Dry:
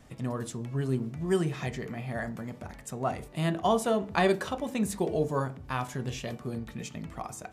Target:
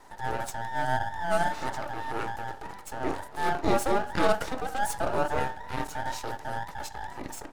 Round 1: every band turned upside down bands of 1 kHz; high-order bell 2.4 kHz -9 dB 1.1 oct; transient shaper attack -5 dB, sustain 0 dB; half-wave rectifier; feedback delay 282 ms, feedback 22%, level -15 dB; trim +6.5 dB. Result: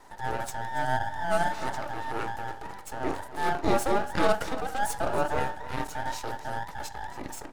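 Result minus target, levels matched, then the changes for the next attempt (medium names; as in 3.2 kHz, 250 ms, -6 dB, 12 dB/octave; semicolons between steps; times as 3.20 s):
echo-to-direct +8 dB
change: feedback delay 282 ms, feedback 22%, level -23 dB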